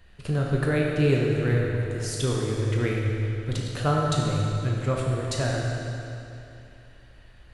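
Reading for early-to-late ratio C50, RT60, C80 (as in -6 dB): -1.0 dB, 2.9 s, 1.0 dB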